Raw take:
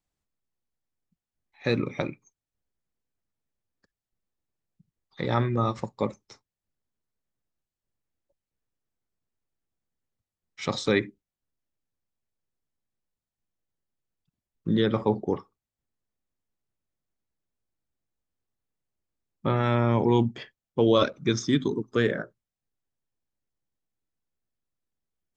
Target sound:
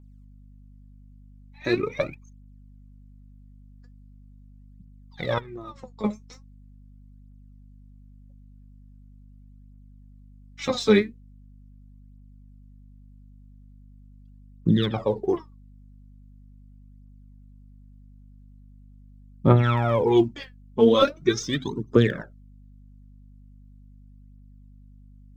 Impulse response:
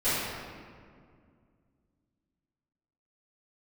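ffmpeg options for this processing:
-filter_complex "[0:a]asettb=1/sr,asplit=3[a][b][c];[a]atrim=end=5.384[d];[b]atrim=start=5.38:end=6.04,asetpts=PTS-STARTPTS,afade=t=in:d=0.004:c=qsin,afade=t=out:st=0.656:d=0.004:c=qsin,acompressor=threshold=-37dB:ratio=16[e];[c]atrim=start=6.036[f];[d][e]acrossfade=d=0.004:c1=hsin:c2=qsin[g];[g][f]acrossfade=d=0.004:c1=qsin:c2=hsin,aphaser=in_gain=1:out_gain=1:delay=4.9:decay=0.75:speed=0.41:type=triangular,aeval=exprs='val(0)+0.00447*(sin(2*PI*50*n/s)+sin(2*PI*2*50*n/s)/2+sin(2*PI*3*50*n/s)/3+sin(2*PI*4*50*n/s)/4+sin(2*PI*5*50*n/s)/5)':c=same,volume=-1dB"

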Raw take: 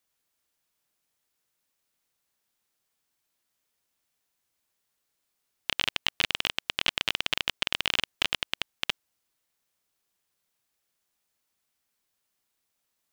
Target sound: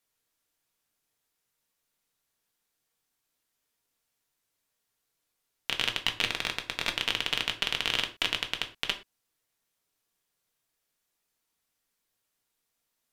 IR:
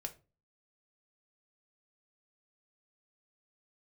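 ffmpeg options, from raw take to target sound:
-filter_complex "[0:a]asettb=1/sr,asplit=3[a][b][c];[a]atrim=end=6.304[d];[b]atrim=start=6.3:end=6.97,asetpts=PTS-STARTPTS,afade=t=in:d=0.004:c=qsin,afade=t=out:st=0.666:d=0.004:c=qsin,bandreject=f=3k:w=5.8[e];[c]atrim=start=6.966[f];[d][e]acrossfade=d=0.004:c1=hsin:c2=qsin[g];[g][f]acrossfade=d=0.004:c1=qsin:c2=hsin[h];[1:a]atrim=start_sample=2205,atrim=end_sample=3969,asetrate=30429,aresample=44100[i];[h][i]afir=irnorm=-1:irlink=0"

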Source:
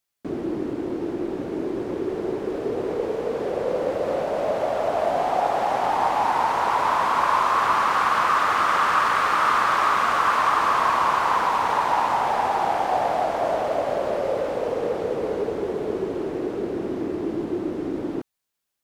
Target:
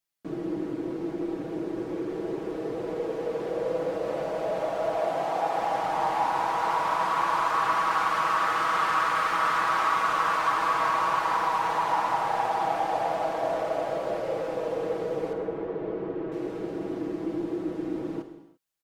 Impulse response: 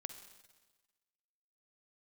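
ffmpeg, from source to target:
-filter_complex "[0:a]asettb=1/sr,asplit=3[a][b][c];[a]atrim=end=4.974[d];[b]atrim=start=4.97:end=5.6,asetpts=PTS-STARTPTS,afade=t=in:d=0.004:c=qsin,afade=t=out:st=0.626:d=0.004:c=qsin,highpass=110[e];[c]atrim=start=5.596[f];[d][e]acrossfade=d=0.004:c1=hsin:c2=qsin[g];[g][f]acrossfade=d=0.004:c1=qsin:c2=hsin,aecho=1:1:6.2:0.65,asettb=1/sr,asplit=3[h][i][j];[h]atrim=end=15.334[k];[i]atrim=start=15.33:end=16.32,asetpts=PTS-STARTPTS,afade=t=in:d=0.004:c=qsin,afade=t=out:st=0.986:d=0.004:c=qsin,lowpass=2.2k[l];[j]atrim=start=16.316[m];[k][l]acrossfade=d=0.004:c1=hsin:c2=qsin[n];[n][m]acrossfade=d=0.004:c1=qsin:c2=hsin[o];[1:a]atrim=start_sample=2205,afade=t=out:st=0.4:d=0.01,atrim=end_sample=18081[p];[o][p]afir=irnorm=-1:irlink=0,volume=-3dB"

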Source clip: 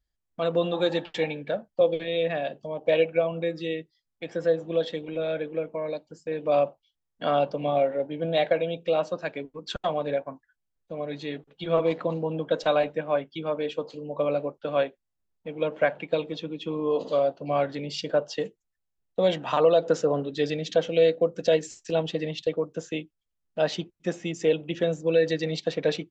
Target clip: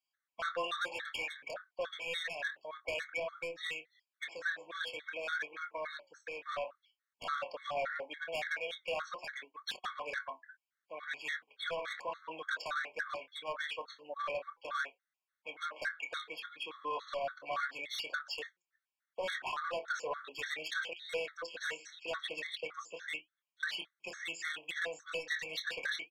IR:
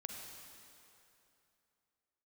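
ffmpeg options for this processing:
-filter_complex "[0:a]acontrast=74,highpass=f=1.5k:t=q:w=2.7,highshelf=f=4.2k:g=-11.5,asplit=2[a][b];[b]adelay=26,volume=-9.5dB[c];[a][c]amix=inputs=2:normalize=0,asettb=1/sr,asplit=3[d][e][f];[d]atrim=end=20.934[g];[e]atrim=start=20.93:end=23.63,asetpts=PTS-STARTPTS,afade=t=in:d=0.004:c=qsin,afade=t=out:st=2.696:d=0.004:c=qsin,acrossover=split=4500[h][i];[h]adelay=160[j];[j][i]amix=inputs=2:normalize=0,atrim=end_sample=119070[k];[f]atrim=start=23.626[l];[g][k]acrossfade=d=0.004:c1=hsin:c2=qsin[m];[m][l]acrossfade=d=0.004:c1=qsin:c2=hsin,acompressor=threshold=-26dB:ratio=12,asoftclip=type=tanh:threshold=-27.5dB,flanger=delay=2.6:depth=3.4:regen=83:speed=0.72:shape=sinusoidal,afftfilt=real='re*gt(sin(2*PI*3.5*pts/sr)*(1-2*mod(floor(b*sr/1024/1100),2)),0)':imag='im*gt(sin(2*PI*3.5*pts/sr)*(1-2*mod(floor(b*sr/1024/1100),2)),0)':win_size=1024:overlap=0.75,volume=3.5dB"

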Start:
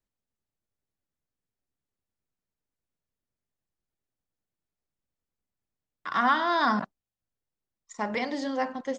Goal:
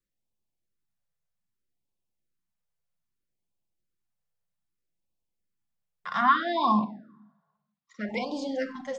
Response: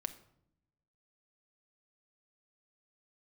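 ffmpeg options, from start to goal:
-filter_complex "[0:a]asettb=1/sr,asplit=3[a][b][c];[a]atrim=end=6.214[d];[b]atrim=start=6.21:end=8.09,asetpts=PTS-STARTPTS,afade=t=in:d=0.004:c=qsin,afade=t=out:st=1.876:d=0.004:c=qsin,highpass=110,equalizer=f=210:t=q:w=4:g=4,equalizer=f=470:t=q:w=4:g=-4,equalizer=f=1.1k:t=q:w=4:g=6,lowpass=f=4.4k:w=0.5412,lowpass=f=4.4k:w=1.3066[e];[c]atrim=start=8.086[f];[d][e]acrossfade=d=0.004:c1=hsin:c2=qsin[g];[g][f]acrossfade=d=0.004:c1=qsin:c2=hsin[h];[1:a]atrim=start_sample=2205,asetrate=41895,aresample=44100[i];[h][i]afir=irnorm=-1:irlink=0,afftfilt=real='re*(1-between(b*sr/1024,270*pow(1700/270,0.5+0.5*sin(2*PI*0.63*pts/sr))/1.41,270*pow(1700/270,0.5+0.5*sin(2*PI*0.63*pts/sr))*1.41))':imag='im*(1-between(b*sr/1024,270*pow(1700/270,0.5+0.5*sin(2*PI*0.63*pts/sr))/1.41,270*pow(1700/270,0.5+0.5*sin(2*PI*0.63*pts/sr))*1.41))':win_size=1024:overlap=0.75"

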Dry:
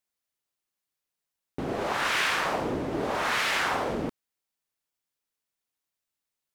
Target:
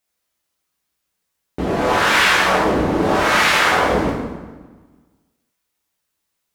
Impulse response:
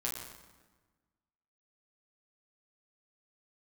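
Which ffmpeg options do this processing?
-filter_complex "[1:a]atrim=start_sample=2205[a];[0:a][a]afir=irnorm=-1:irlink=0,volume=9dB"

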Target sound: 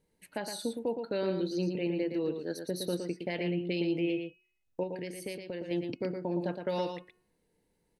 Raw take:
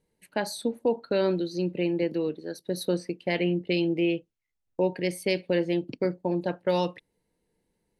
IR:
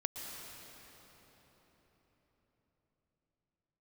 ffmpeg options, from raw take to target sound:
-filter_complex "[0:a]bandreject=f=363.2:t=h:w=4,bandreject=f=726.4:t=h:w=4,bandreject=f=1.0896k:t=h:w=4,bandreject=f=1.4528k:t=h:w=4,bandreject=f=1.816k:t=h:w=4,bandreject=f=2.1792k:t=h:w=4,bandreject=f=2.5424k:t=h:w=4,bandreject=f=2.9056k:t=h:w=4,alimiter=limit=-23.5dB:level=0:latency=1:release=341,asettb=1/sr,asplit=3[a][b][c];[a]atrim=end=4.834[d];[b]atrim=start=4.83:end=5.71,asetpts=PTS-STARTPTS,afade=t=in:d=0.004:c=qsin,afade=t=out:st=0.876:d=0.004:c=qsin,acompressor=threshold=-38dB:ratio=2.5[e];[c]atrim=start=5.706[f];[d][e]acrossfade=d=0.004:c1=hsin:c2=qsin[g];[g][f]acrossfade=d=0.004:c1=qsin:c2=hsin,aecho=1:1:115:0.473"

